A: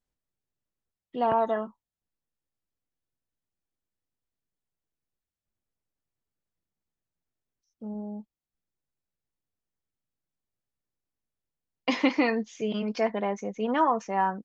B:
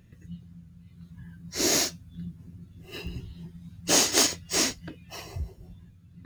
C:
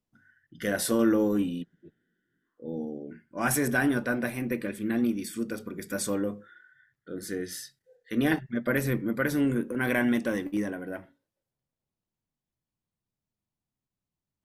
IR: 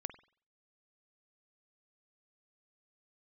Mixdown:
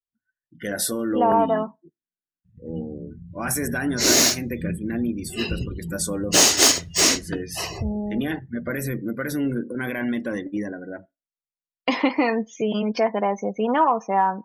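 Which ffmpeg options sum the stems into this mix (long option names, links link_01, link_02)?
-filter_complex "[0:a]adynamicequalizer=threshold=0.0126:dfrequency=840:dqfactor=1.4:tfrequency=840:tqfactor=1.4:attack=5:release=100:ratio=0.375:range=2.5:mode=boostabove:tftype=bell,volume=1.5dB,asplit=3[link_01][link_02][link_03];[link_02]volume=-19dB[link_04];[1:a]lowshelf=frequency=490:gain=-3.5,adelay=2450,volume=2dB,asplit=2[link_05][link_06];[link_06]volume=-5.5dB[link_07];[2:a]alimiter=limit=-19dB:level=0:latency=1:release=43,adynamicequalizer=threshold=0.00501:dfrequency=2900:dqfactor=0.7:tfrequency=2900:tqfactor=0.7:attack=5:release=100:ratio=0.375:range=2.5:mode=boostabove:tftype=highshelf,volume=-8dB,asplit=2[link_08][link_09];[link_09]volume=-6dB[link_10];[link_03]apad=whole_len=383825[link_11];[link_05][link_11]sidechaincompress=threshold=-44dB:ratio=8:attack=41:release=864[link_12];[link_01][link_12]amix=inputs=2:normalize=0,acompressor=threshold=-31dB:ratio=2,volume=0dB[link_13];[3:a]atrim=start_sample=2205[link_14];[link_04][link_07][link_10]amix=inputs=3:normalize=0[link_15];[link_15][link_14]afir=irnorm=-1:irlink=0[link_16];[link_08][link_13][link_16]amix=inputs=3:normalize=0,afftdn=noise_reduction=31:noise_floor=-46,acontrast=82"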